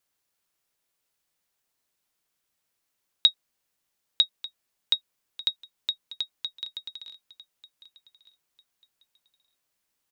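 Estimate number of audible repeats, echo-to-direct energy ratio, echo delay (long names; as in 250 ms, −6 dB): 2, −18.0 dB, 1,192 ms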